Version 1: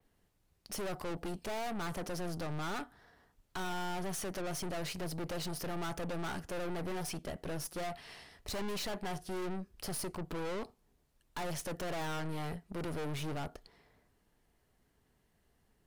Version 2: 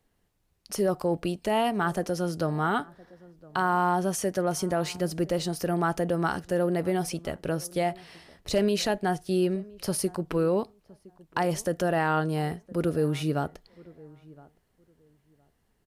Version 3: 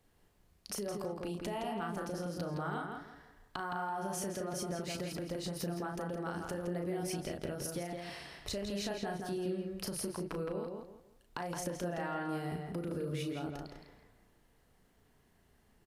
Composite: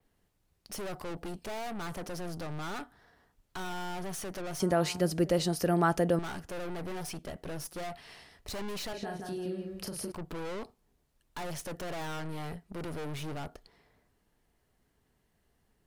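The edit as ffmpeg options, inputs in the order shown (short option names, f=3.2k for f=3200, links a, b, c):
-filter_complex "[0:a]asplit=3[a][b][c];[a]atrim=end=4.602[d];[1:a]atrim=start=4.598:end=6.192[e];[b]atrim=start=6.188:end=8.932[f];[2:a]atrim=start=8.928:end=10.122[g];[c]atrim=start=10.118[h];[d][e]acrossfade=d=0.004:c1=hsin:c2=hsin[i];[i][f]acrossfade=d=0.004:c1=hsin:c2=hsin[j];[j][g]acrossfade=d=0.004:c1=hsin:c2=hsin[k];[k][h]acrossfade=d=0.004:c1=hsin:c2=hsin"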